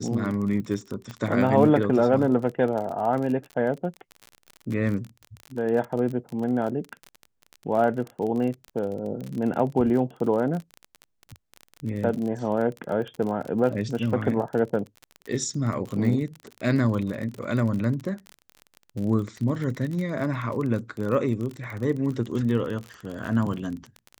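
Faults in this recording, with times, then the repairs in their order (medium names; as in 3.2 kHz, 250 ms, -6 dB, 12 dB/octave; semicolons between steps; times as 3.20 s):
crackle 33 per s -30 dBFS
1.11 s: pop -22 dBFS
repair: de-click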